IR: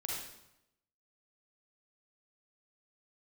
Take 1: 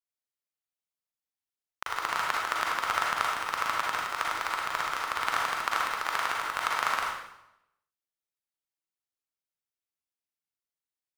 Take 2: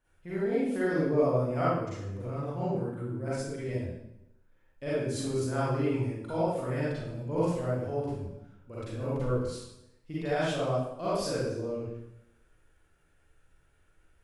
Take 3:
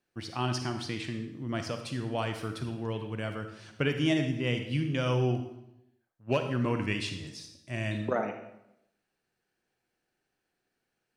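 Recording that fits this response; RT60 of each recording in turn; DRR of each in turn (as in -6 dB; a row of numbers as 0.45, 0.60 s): 1; 0.85, 0.85, 0.85 s; -3.5, -10.5, 6.0 dB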